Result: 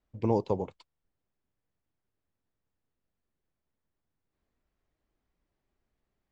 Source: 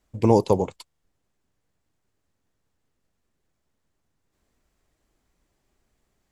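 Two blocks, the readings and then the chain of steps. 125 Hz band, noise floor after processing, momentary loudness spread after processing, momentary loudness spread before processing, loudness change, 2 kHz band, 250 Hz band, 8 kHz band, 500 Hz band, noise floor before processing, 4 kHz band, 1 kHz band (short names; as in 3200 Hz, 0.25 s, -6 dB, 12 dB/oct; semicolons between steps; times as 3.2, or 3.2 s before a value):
-9.0 dB, -85 dBFS, 8 LU, 8 LU, -9.5 dB, -11.0 dB, -9.0 dB, under -20 dB, -9.5 dB, -76 dBFS, -14.0 dB, -9.5 dB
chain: air absorption 150 m; gain -9 dB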